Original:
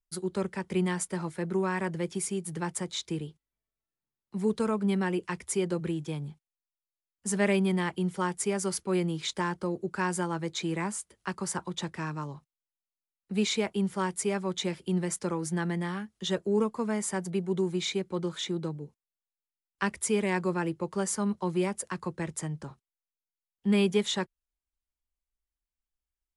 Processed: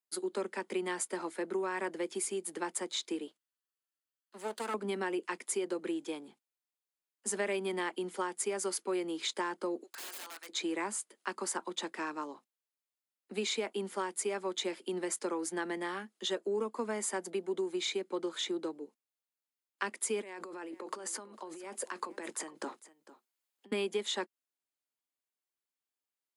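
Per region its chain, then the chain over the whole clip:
3.27–4.74 minimum comb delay 0.66 ms + bell 250 Hz -10 dB 2.6 oct
9.83–10.49 HPF 1500 Hz + wrapped overs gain 38.5 dB
20.22–23.72 negative-ratio compressor -39 dBFS + low shelf 130 Hz -11.5 dB + echo 0.452 s -18 dB
whole clip: steep high-pass 240 Hz 48 dB/oct; notch 5700 Hz, Q 15; compressor 4:1, threshold -31 dBFS

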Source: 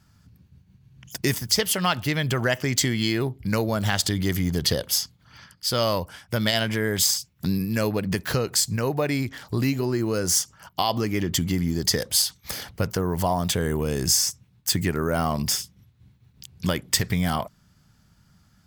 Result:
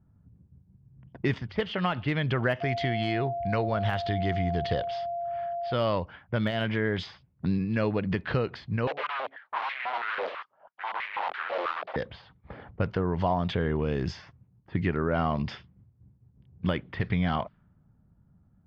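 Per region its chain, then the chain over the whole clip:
2.6–5.72 bell 250 Hz -5.5 dB 1 oct + whine 690 Hz -27 dBFS
8.87–11.96 bell 1400 Hz -8 dB 2.4 oct + wrapped overs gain 26 dB + stepped high-pass 6.1 Hz 540–2100 Hz
whole clip: inverse Chebyshev low-pass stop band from 9900 Hz, stop band 60 dB; de-esser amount 90%; low-pass opened by the level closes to 600 Hz, open at -20.5 dBFS; gain -2.5 dB

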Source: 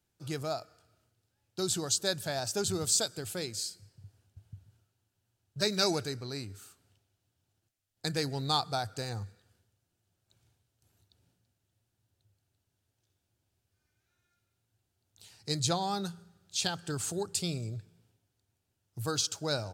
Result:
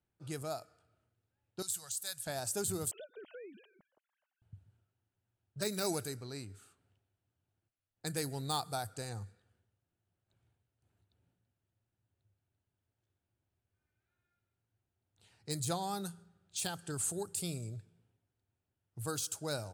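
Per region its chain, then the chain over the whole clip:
1.62–2.27 passive tone stack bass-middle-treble 10-0-10 + upward compressor, threshold -40 dBFS
2.91–4.42 sine-wave speech + bell 610 Hz +5.5 dB 0.39 oct + compressor 20:1, threshold -40 dBFS
whole clip: low-pass opened by the level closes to 2800 Hz, open at -29 dBFS; de-esser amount 65%; resonant high shelf 7300 Hz +12 dB, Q 1.5; gain -5 dB

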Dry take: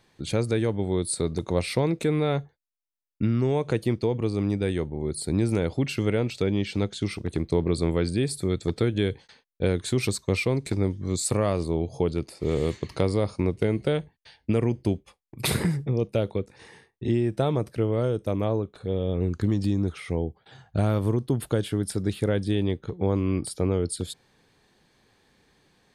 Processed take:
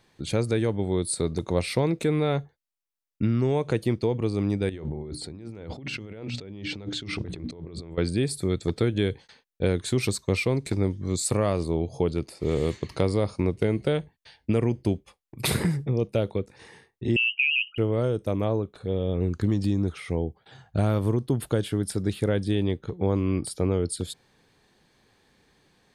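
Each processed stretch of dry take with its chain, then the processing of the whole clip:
4.69–7.98 notches 60/120/180/240/300 Hz + negative-ratio compressor -36 dBFS + air absorption 92 m
17.16–17.78 formant sharpening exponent 3 + inverted band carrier 3000 Hz
whole clip: dry

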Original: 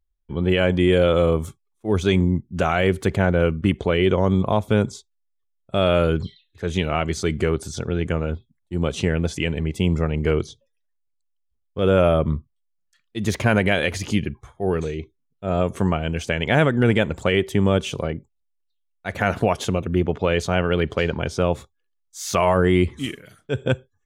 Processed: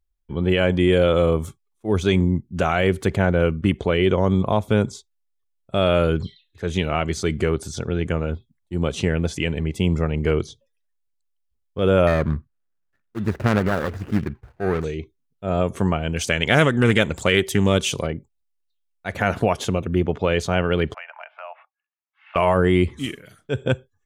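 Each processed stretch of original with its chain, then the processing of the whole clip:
12.07–14.84 median filter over 41 samples + bell 1500 Hz +8.5 dB 1 oct
16.16–18.07 high shelf 3100 Hz +11.5 dB + Doppler distortion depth 0.14 ms
20.94–22.36 Chebyshev band-pass 630–2800 Hz, order 5 + compressor 2:1, threshold -39 dBFS
whole clip: dry

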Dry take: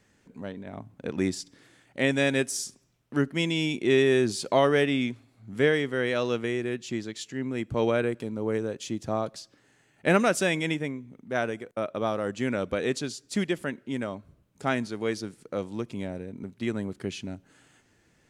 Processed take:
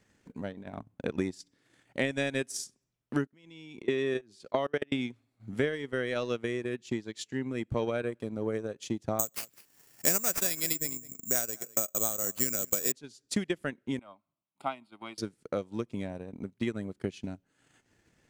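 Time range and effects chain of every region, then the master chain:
3.26–4.92 HPF 130 Hz 6 dB/oct + high shelf 8000 Hz -11 dB + level quantiser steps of 22 dB
9.19–12.92 high shelf 4200 Hz +7.5 dB + echo 0.205 s -17 dB + careless resampling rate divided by 6×, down none, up zero stuff
13.99–15.18 HPF 380 Hz + high shelf 2500 Hz -7.5 dB + fixed phaser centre 1700 Hz, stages 6
whole clip: transient shaper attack +7 dB, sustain -11 dB; compressor 2.5:1, threshold -24 dBFS; gain -3.5 dB

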